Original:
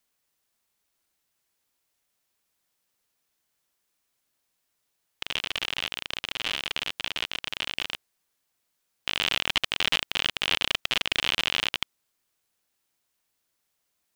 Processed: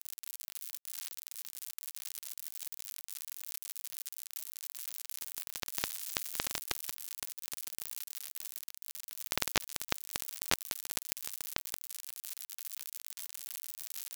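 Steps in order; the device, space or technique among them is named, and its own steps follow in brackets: 5.68–6.44 s: dynamic bell 2.8 kHz, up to +8 dB, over -44 dBFS, Q 0.99; budget class-D amplifier (dead-time distortion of 0.18 ms; zero-crossing glitches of -17 dBFS); trim +1 dB

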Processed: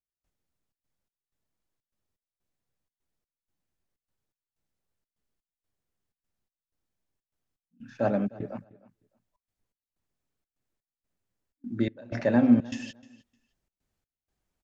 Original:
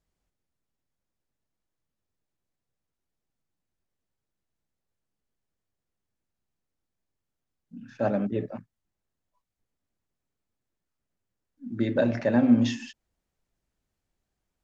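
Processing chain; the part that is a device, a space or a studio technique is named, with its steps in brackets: trance gate with a delay (trance gate "..xxxx.xx" 125 bpm -24 dB; feedback delay 306 ms, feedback 19%, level -21 dB)

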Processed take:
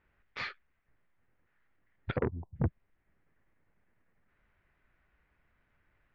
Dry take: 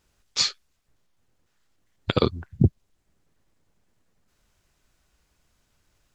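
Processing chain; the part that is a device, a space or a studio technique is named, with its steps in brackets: 2.16–2.56 s: steep low-pass 1 kHz 96 dB/octave; overdriven synthesiser ladder filter (saturation -19 dBFS, distortion -7 dB; four-pole ladder low-pass 2.3 kHz, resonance 50%); trim +5 dB

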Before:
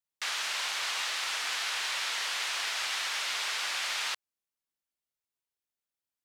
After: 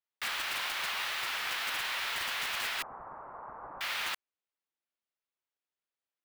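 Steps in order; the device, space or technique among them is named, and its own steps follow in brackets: early digital voice recorder (band-pass 290–3500 Hz; block-companded coder 3-bit); 2.82–3.81 s: steep low-pass 1.1 kHz 36 dB/octave

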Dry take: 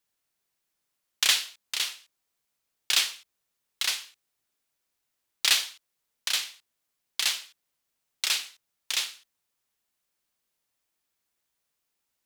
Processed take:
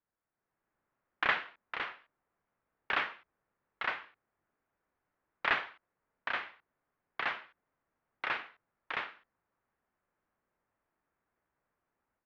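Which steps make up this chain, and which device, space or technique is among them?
action camera in a waterproof case (low-pass 1.7 kHz 24 dB/octave; level rider gain up to 9 dB; trim -2.5 dB; AAC 96 kbps 48 kHz)

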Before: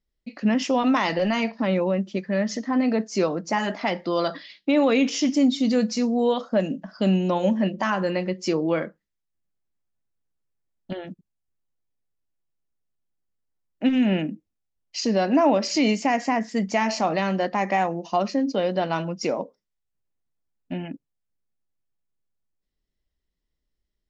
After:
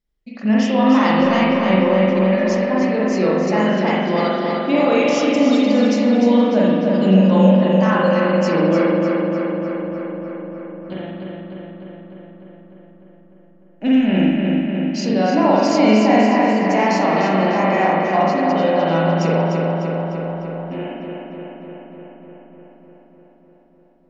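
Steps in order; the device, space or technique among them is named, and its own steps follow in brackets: dub delay into a spring reverb (filtered feedback delay 300 ms, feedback 74%, low-pass 4.4 kHz, level -3.5 dB; spring tank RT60 1 s, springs 42 ms, chirp 45 ms, DRR -4.5 dB); trim -1 dB

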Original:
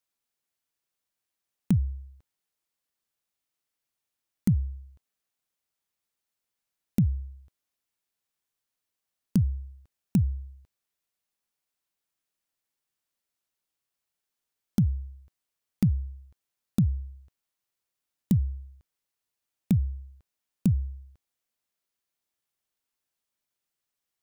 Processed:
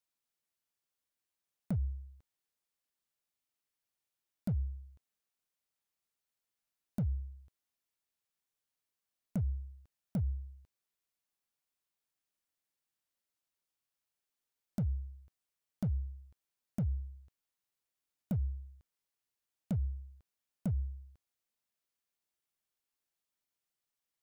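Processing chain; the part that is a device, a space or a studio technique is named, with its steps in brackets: clipper into limiter (hard clipper -18.5 dBFS, distortion -17 dB; peak limiter -24 dBFS, peak gain reduction 5.5 dB); trim -4.5 dB

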